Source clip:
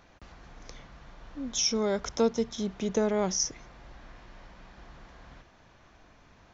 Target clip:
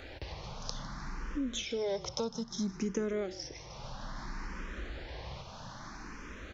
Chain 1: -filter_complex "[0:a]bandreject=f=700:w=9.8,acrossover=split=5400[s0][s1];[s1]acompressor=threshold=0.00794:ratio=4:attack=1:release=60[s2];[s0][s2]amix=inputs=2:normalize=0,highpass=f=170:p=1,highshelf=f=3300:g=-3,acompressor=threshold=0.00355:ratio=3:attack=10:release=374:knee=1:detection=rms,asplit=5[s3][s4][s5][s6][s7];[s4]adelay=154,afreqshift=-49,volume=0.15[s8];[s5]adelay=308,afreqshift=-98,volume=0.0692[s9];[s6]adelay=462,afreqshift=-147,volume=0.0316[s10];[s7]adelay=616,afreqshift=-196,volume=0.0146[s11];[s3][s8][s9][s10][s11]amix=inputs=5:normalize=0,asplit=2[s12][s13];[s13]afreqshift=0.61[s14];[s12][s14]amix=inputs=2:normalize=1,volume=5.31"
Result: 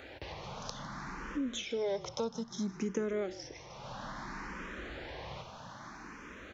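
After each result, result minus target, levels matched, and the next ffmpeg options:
125 Hz band -2.0 dB; 4 kHz band -2.0 dB
-filter_complex "[0:a]bandreject=f=700:w=9.8,acrossover=split=5400[s0][s1];[s1]acompressor=threshold=0.00794:ratio=4:attack=1:release=60[s2];[s0][s2]amix=inputs=2:normalize=0,highshelf=f=3300:g=-3,acompressor=threshold=0.00355:ratio=3:attack=10:release=374:knee=1:detection=rms,asplit=5[s3][s4][s5][s6][s7];[s4]adelay=154,afreqshift=-49,volume=0.15[s8];[s5]adelay=308,afreqshift=-98,volume=0.0692[s9];[s6]adelay=462,afreqshift=-147,volume=0.0316[s10];[s7]adelay=616,afreqshift=-196,volume=0.0146[s11];[s3][s8][s9][s10][s11]amix=inputs=5:normalize=0,asplit=2[s12][s13];[s13]afreqshift=0.61[s14];[s12][s14]amix=inputs=2:normalize=1,volume=5.31"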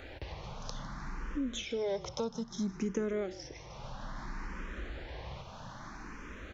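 4 kHz band -3.0 dB
-filter_complex "[0:a]bandreject=f=700:w=9.8,acrossover=split=5400[s0][s1];[s1]acompressor=threshold=0.00794:ratio=4:attack=1:release=60[s2];[s0][s2]amix=inputs=2:normalize=0,highshelf=f=3300:g=-3,acompressor=threshold=0.00355:ratio=3:attack=10:release=374:knee=1:detection=rms,equalizer=f=5000:t=o:w=0.76:g=6.5,asplit=5[s3][s4][s5][s6][s7];[s4]adelay=154,afreqshift=-49,volume=0.15[s8];[s5]adelay=308,afreqshift=-98,volume=0.0692[s9];[s6]adelay=462,afreqshift=-147,volume=0.0316[s10];[s7]adelay=616,afreqshift=-196,volume=0.0146[s11];[s3][s8][s9][s10][s11]amix=inputs=5:normalize=0,asplit=2[s12][s13];[s13]afreqshift=0.61[s14];[s12][s14]amix=inputs=2:normalize=1,volume=5.31"

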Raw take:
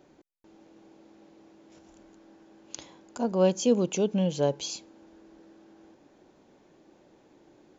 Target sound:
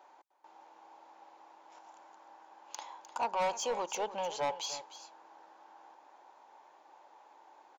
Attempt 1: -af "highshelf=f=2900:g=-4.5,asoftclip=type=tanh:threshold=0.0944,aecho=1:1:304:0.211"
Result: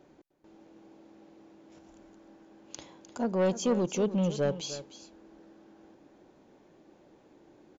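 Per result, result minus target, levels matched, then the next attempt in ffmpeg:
1 kHz band -13.0 dB; saturation: distortion -5 dB
-af "highpass=f=890:t=q:w=5,highshelf=f=2900:g=-4.5,asoftclip=type=tanh:threshold=0.0944,aecho=1:1:304:0.211"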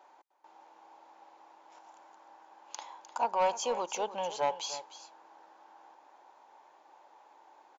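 saturation: distortion -6 dB
-af "highpass=f=890:t=q:w=5,highshelf=f=2900:g=-4.5,asoftclip=type=tanh:threshold=0.0447,aecho=1:1:304:0.211"

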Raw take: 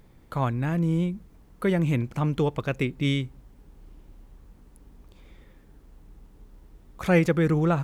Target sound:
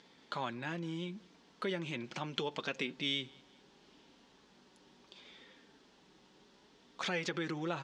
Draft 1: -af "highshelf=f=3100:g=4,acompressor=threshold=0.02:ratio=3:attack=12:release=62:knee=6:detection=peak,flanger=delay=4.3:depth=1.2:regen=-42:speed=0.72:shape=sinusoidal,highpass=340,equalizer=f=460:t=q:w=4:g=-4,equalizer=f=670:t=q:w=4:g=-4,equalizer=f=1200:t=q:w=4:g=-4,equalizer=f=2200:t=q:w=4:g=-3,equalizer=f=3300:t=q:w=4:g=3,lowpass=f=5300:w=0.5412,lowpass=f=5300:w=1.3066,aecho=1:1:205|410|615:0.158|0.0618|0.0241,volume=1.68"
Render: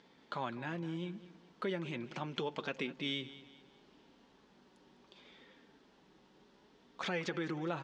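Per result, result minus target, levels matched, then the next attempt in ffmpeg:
echo-to-direct +10.5 dB; 8 kHz band -4.5 dB
-af "highshelf=f=3100:g=4,acompressor=threshold=0.02:ratio=3:attack=12:release=62:knee=6:detection=peak,flanger=delay=4.3:depth=1.2:regen=-42:speed=0.72:shape=sinusoidal,highpass=340,equalizer=f=460:t=q:w=4:g=-4,equalizer=f=670:t=q:w=4:g=-4,equalizer=f=1200:t=q:w=4:g=-4,equalizer=f=2200:t=q:w=4:g=-3,equalizer=f=3300:t=q:w=4:g=3,lowpass=f=5300:w=0.5412,lowpass=f=5300:w=1.3066,aecho=1:1:205|410:0.0473|0.0185,volume=1.68"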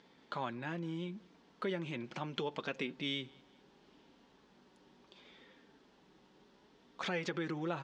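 8 kHz band -4.5 dB
-af "highshelf=f=3100:g=13,acompressor=threshold=0.02:ratio=3:attack=12:release=62:knee=6:detection=peak,flanger=delay=4.3:depth=1.2:regen=-42:speed=0.72:shape=sinusoidal,highpass=340,equalizer=f=460:t=q:w=4:g=-4,equalizer=f=670:t=q:w=4:g=-4,equalizer=f=1200:t=q:w=4:g=-4,equalizer=f=2200:t=q:w=4:g=-3,equalizer=f=3300:t=q:w=4:g=3,lowpass=f=5300:w=0.5412,lowpass=f=5300:w=1.3066,aecho=1:1:205|410:0.0473|0.0185,volume=1.68"

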